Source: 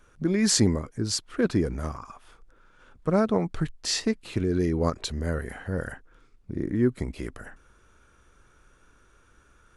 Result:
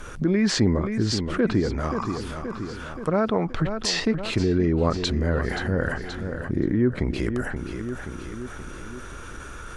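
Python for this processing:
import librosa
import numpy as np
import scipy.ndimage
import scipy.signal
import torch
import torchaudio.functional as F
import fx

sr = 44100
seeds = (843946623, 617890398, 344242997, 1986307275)

p1 = fx.env_lowpass_down(x, sr, base_hz=2900.0, full_db=-23.0)
p2 = fx.low_shelf(p1, sr, hz=450.0, db=-6.5, at=(1.6, 3.62))
p3 = p2 + fx.echo_feedback(p2, sr, ms=527, feedback_pct=42, wet_db=-14.0, dry=0)
y = fx.env_flatten(p3, sr, amount_pct=50)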